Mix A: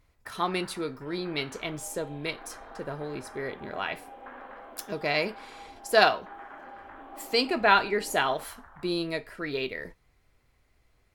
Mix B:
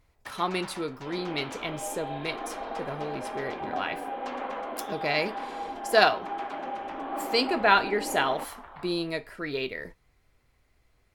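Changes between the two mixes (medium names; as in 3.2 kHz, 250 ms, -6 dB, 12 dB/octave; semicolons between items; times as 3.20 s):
first sound: remove four-pole ladder low-pass 1.9 kHz, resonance 55%; second sound +12.0 dB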